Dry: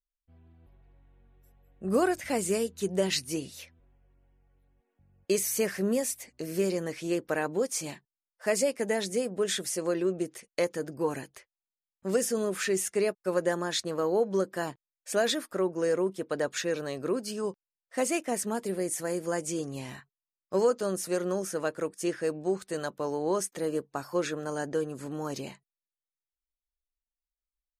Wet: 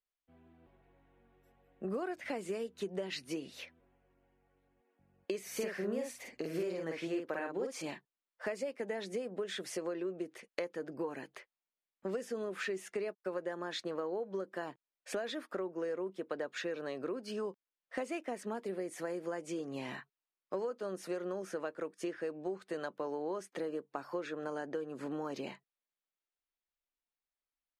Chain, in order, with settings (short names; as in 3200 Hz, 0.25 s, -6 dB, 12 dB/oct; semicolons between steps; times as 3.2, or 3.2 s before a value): three-band isolator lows -16 dB, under 190 Hz, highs -16 dB, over 4000 Hz; compressor 6:1, threshold -38 dBFS, peak gain reduction 16.5 dB; 5.41–7.82 doubler 49 ms -3 dB; gain +2.5 dB